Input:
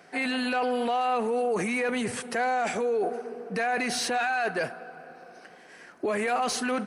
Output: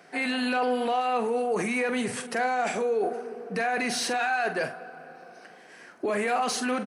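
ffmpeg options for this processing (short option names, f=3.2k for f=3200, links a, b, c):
-filter_complex "[0:a]highpass=110,asplit=2[a][b];[b]adelay=44,volume=-10dB[c];[a][c]amix=inputs=2:normalize=0"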